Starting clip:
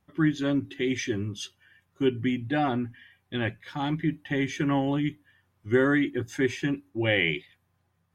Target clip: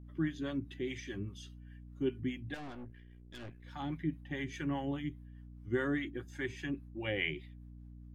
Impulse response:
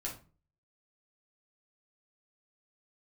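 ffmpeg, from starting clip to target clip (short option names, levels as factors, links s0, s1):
-filter_complex "[0:a]acrossover=split=620[s0][s1];[s0]aeval=exprs='val(0)*(1-0.7/2+0.7/2*cos(2*PI*4.9*n/s))':c=same[s2];[s1]aeval=exprs='val(0)*(1-0.7/2-0.7/2*cos(2*PI*4.9*n/s))':c=same[s3];[s2][s3]amix=inputs=2:normalize=0,aeval=exprs='val(0)+0.00794*(sin(2*PI*60*n/s)+sin(2*PI*2*60*n/s)/2+sin(2*PI*3*60*n/s)/3+sin(2*PI*4*60*n/s)/4+sin(2*PI*5*60*n/s)/5)':c=same,asettb=1/sr,asplit=3[s4][s5][s6];[s4]atrim=end=2.544[s7];[s5]atrim=start=2.54:end=3.64,asetpts=PTS-STARTPTS,afade=t=in:d=0.004:c=qsin,afade=t=out:st=1.096:d=0.004:c=qsin,aeval=exprs='(tanh(63.1*val(0)+0.75)-tanh(0.75))/63.1':c=same[s8];[s6]atrim=start=3.636[s9];[s7][s8]acrossfade=d=0.004:c1=hsin:c2=qsin[s10];[s10][s9]acrossfade=d=0.004:c1=qsin:c2=hsin,volume=0.422"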